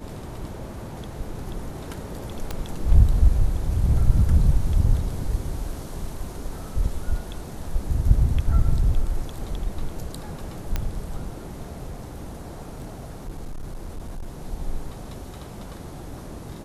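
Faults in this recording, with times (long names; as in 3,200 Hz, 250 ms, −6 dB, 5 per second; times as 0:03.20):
0:02.51: click −15 dBFS
0:10.76: click −11 dBFS
0:11.87–0:14.46: clipping −28.5 dBFS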